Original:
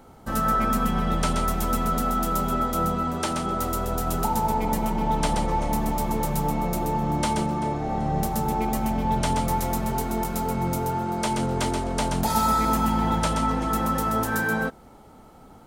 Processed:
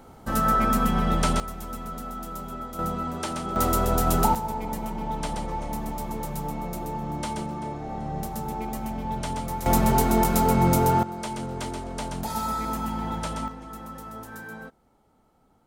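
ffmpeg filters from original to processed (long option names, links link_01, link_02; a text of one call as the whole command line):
ffmpeg -i in.wav -af "asetnsamples=nb_out_samples=441:pad=0,asendcmd='1.4 volume volume -11dB;2.79 volume volume -4dB;3.56 volume volume 4dB;4.35 volume volume -6.5dB;9.66 volume volume 6dB;11.03 volume volume -7dB;13.48 volume volume -15dB',volume=1dB" out.wav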